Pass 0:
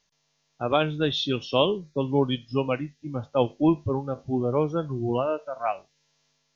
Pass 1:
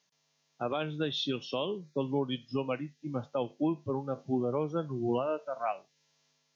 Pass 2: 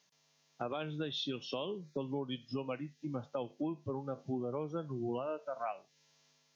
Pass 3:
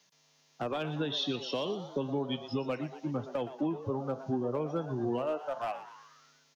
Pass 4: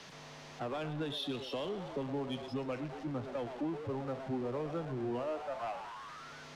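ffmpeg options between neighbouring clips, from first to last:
-af "highpass=f=130:w=0.5412,highpass=f=130:w=1.3066,alimiter=limit=-18.5dB:level=0:latency=1:release=341,volume=-2.5dB"
-af "acompressor=threshold=-41dB:ratio=2.5,volume=2.5dB"
-filter_complex "[0:a]acrossover=split=280|490|3000[a][b][c][d];[c]asoftclip=type=hard:threshold=-37dB[e];[a][b][e][d]amix=inputs=4:normalize=0,asplit=7[f][g][h][i][j][k][l];[g]adelay=119,afreqshift=130,volume=-13dB[m];[h]adelay=238,afreqshift=260,volume=-18dB[n];[i]adelay=357,afreqshift=390,volume=-23.1dB[o];[j]adelay=476,afreqshift=520,volume=-28.1dB[p];[k]adelay=595,afreqshift=650,volume=-33.1dB[q];[l]adelay=714,afreqshift=780,volume=-38.2dB[r];[f][m][n][o][p][q][r]amix=inputs=7:normalize=0,volume=5dB"
-filter_complex "[0:a]aeval=exprs='val(0)+0.5*0.0178*sgn(val(0))':c=same,acrossover=split=220[a][b];[b]adynamicsmooth=sensitivity=2.5:basefreq=3.7k[c];[a][c]amix=inputs=2:normalize=0,volume=-6.5dB"

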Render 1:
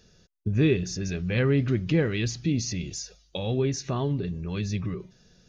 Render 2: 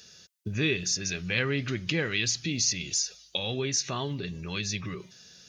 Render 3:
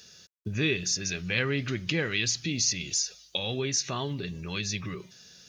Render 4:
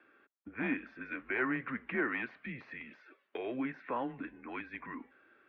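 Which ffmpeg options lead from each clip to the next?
-filter_complex "[0:a]highpass=77,tiltshelf=f=1.2k:g=-8.5,asplit=2[a][b];[b]acompressor=threshold=-37dB:ratio=6,volume=1dB[c];[a][c]amix=inputs=2:normalize=0,volume=-2dB"
-af "acrusher=bits=11:mix=0:aa=0.000001"
-af "afreqshift=-41,volume=21dB,asoftclip=hard,volume=-21dB,highpass=f=350:t=q:w=0.5412,highpass=f=350:t=q:w=1.307,lowpass=f=2.1k:t=q:w=0.5176,lowpass=f=2.1k:t=q:w=0.7071,lowpass=f=2.1k:t=q:w=1.932,afreqshift=-84"

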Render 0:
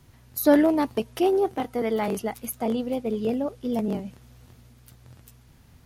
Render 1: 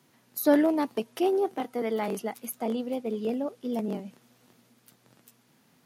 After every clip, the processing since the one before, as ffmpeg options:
-af "highpass=f=180:w=0.5412,highpass=f=180:w=1.3066,volume=-3.5dB"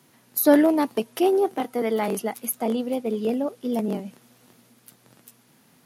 -af "equalizer=f=11k:w=1.8:g=5.5,volume=5dB"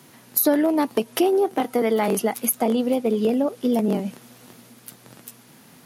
-af "acompressor=threshold=-26dB:ratio=4,volume=8.5dB"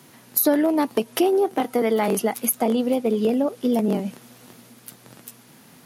-af anull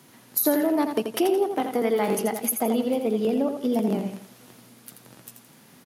-af "aecho=1:1:84|168|252|336:0.447|0.161|0.0579|0.0208,volume=-3.5dB"

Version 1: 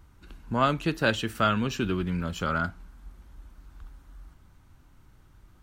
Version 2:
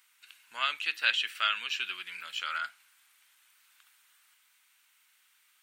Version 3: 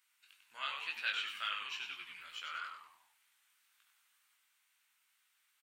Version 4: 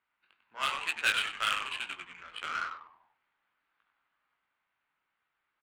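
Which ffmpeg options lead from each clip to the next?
-filter_complex "[0:a]highpass=f=2.4k:t=q:w=1.7,aexciter=amount=2.3:drive=3.7:freq=7.9k,acrossover=split=5000[a][b];[b]acompressor=threshold=-57dB:ratio=4:attack=1:release=60[c];[a][c]amix=inputs=2:normalize=0,volume=2dB"
-filter_complex "[0:a]flanger=delay=17.5:depth=4.5:speed=2.1,asplit=2[a][b];[b]asplit=5[c][d][e][f][g];[c]adelay=97,afreqshift=-110,volume=-6dB[h];[d]adelay=194,afreqshift=-220,volume=-13.7dB[i];[e]adelay=291,afreqshift=-330,volume=-21.5dB[j];[f]adelay=388,afreqshift=-440,volume=-29.2dB[k];[g]adelay=485,afreqshift=-550,volume=-37dB[l];[h][i][j][k][l]amix=inputs=5:normalize=0[m];[a][m]amix=inputs=2:normalize=0,volume=-7dB"
-filter_complex "[0:a]asplit=2[a][b];[b]asoftclip=type=tanh:threshold=-34.5dB,volume=-10.5dB[c];[a][c]amix=inputs=2:normalize=0,aresample=11025,aresample=44100,adynamicsmooth=sensitivity=7:basefreq=990,volume=8dB"

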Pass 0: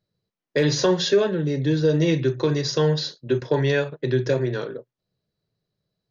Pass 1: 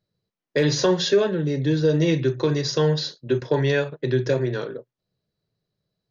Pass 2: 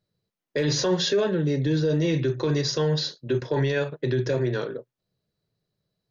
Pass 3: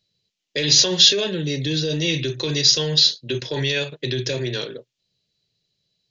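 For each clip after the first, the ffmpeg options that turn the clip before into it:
-af anull
-af "alimiter=limit=-15.5dB:level=0:latency=1:release=11"
-af "acontrast=71,highshelf=f=2k:t=q:w=1.5:g=13,aresample=16000,aresample=44100,volume=-7.5dB"

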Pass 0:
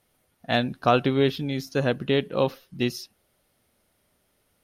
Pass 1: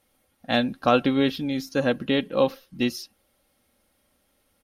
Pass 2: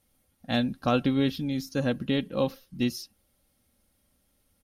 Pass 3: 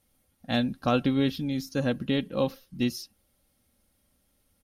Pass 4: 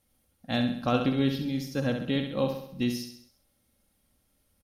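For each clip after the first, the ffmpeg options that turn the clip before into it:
-af "aecho=1:1:3.7:0.48"
-af "bass=f=250:g=10,treble=f=4k:g=6,volume=-7dB"
-af anull
-af "aecho=1:1:66|132|198|264|330|396:0.473|0.237|0.118|0.0591|0.0296|0.0148,volume=-2dB"

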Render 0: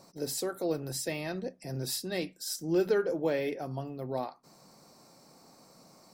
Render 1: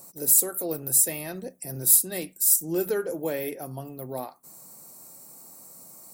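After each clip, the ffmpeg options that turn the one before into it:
-af "aexciter=amount=11.9:drive=4.3:freq=7.3k"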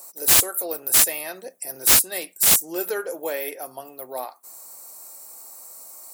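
-af "highpass=590,aeval=exprs='(mod(4.47*val(0)+1,2)-1)/4.47':c=same,volume=5.5dB"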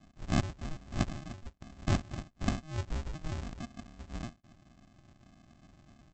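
-af "aresample=16000,acrusher=samples=34:mix=1:aa=0.000001,aresample=44100,equalizer=f=410:w=1.5:g=-2,volume=-7dB"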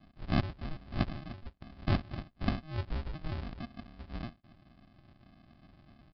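-af "aresample=11025,aresample=44100"

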